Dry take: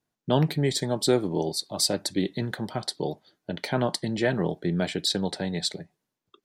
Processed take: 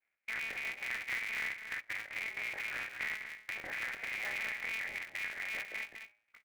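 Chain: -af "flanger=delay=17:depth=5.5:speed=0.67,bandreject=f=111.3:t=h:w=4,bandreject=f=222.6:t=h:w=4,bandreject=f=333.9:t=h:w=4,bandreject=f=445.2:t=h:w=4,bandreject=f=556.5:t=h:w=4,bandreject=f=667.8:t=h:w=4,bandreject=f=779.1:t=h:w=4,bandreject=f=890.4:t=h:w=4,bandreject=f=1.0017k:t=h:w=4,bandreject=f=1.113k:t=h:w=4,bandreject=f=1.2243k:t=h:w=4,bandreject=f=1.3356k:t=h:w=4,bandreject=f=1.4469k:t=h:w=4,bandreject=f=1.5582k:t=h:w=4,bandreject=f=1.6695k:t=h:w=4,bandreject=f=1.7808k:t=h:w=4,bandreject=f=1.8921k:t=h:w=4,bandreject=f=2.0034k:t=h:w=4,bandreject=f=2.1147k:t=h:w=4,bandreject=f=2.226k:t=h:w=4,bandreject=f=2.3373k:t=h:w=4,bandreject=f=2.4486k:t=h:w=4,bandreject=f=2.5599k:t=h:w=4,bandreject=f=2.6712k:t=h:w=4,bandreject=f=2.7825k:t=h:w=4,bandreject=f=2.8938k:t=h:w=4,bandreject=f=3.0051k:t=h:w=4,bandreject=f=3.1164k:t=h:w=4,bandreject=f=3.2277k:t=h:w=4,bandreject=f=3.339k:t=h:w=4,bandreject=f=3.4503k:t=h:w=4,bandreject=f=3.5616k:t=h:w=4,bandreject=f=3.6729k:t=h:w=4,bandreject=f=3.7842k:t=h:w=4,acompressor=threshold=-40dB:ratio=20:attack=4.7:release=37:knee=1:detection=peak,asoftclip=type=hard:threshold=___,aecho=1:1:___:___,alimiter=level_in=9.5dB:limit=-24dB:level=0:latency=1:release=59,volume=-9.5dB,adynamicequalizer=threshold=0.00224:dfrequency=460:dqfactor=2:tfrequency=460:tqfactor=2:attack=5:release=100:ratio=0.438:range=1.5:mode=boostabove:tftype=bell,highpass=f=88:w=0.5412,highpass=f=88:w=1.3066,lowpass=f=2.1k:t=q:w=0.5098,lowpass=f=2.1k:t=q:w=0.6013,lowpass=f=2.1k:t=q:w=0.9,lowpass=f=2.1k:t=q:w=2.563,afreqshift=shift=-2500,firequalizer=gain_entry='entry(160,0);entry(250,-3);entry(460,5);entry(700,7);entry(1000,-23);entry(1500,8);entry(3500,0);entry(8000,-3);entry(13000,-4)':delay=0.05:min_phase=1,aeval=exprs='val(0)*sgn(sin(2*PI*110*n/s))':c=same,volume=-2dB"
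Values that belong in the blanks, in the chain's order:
-32.5dB, 206, 0.355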